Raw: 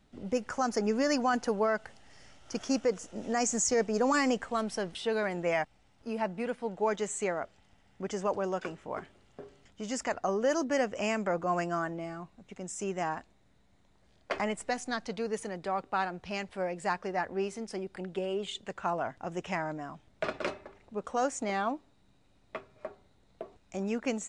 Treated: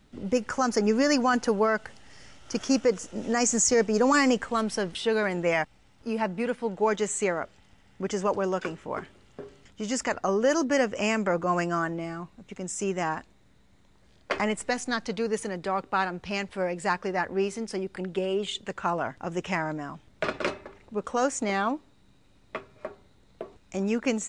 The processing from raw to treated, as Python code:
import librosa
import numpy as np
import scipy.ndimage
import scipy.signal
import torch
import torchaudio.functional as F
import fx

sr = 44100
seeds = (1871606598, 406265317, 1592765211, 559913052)

y = fx.peak_eq(x, sr, hz=700.0, db=-5.0, octaves=0.47)
y = F.gain(torch.from_numpy(y), 6.0).numpy()